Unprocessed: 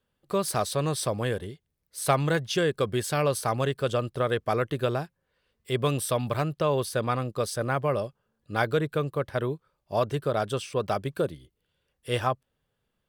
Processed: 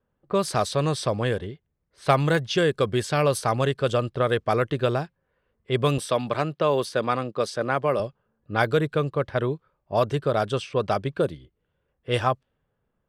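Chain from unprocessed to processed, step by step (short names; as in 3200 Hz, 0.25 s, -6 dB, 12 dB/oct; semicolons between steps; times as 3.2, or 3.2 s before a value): 5.98–8 HPF 180 Hz 12 dB/oct; low-pass opened by the level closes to 1400 Hz, open at -20.5 dBFS; gain +3.5 dB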